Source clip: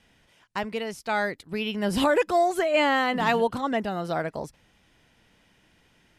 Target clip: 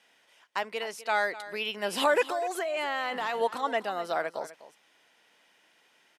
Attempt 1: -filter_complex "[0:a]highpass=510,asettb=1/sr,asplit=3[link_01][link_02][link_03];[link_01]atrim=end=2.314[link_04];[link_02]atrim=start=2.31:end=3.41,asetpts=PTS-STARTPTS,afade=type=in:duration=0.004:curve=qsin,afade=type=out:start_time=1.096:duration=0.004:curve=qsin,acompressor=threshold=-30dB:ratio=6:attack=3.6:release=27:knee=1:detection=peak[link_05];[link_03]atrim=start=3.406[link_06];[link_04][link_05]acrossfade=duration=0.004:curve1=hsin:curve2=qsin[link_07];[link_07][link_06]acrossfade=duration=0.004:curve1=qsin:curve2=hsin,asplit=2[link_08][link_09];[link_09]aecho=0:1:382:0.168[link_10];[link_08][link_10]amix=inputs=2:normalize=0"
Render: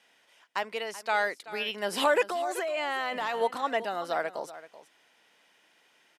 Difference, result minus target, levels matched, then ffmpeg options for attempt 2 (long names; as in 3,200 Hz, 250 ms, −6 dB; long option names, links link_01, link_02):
echo 131 ms late
-filter_complex "[0:a]highpass=510,asettb=1/sr,asplit=3[link_01][link_02][link_03];[link_01]atrim=end=2.314[link_04];[link_02]atrim=start=2.31:end=3.41,asetpts=PTS-STARTPTS,afade=type=in:duration=0.004:curve=qsin,afade=type=out:start_time=1.096:duration=0.004:curve=qsin,acompressor=threshold=-30dB:ratio=6:attack=3.6:release=27:knee=1:detection=peak[link_05];[link_03]atrim=start=3.406[link_06];[link_04][link_05]acrossfade=duration=0.004:curve1=hsin:curve2=qsin[link_07];[link_07][link_06]acrossfade=duration=0.004:curve1=qsin:curve2=hsin,asplit=2[link_08][link_09];[link_09]aecho=0:1:251:0.168[link_10];[link_08][link_10]amix=inputs=2:normalize=0"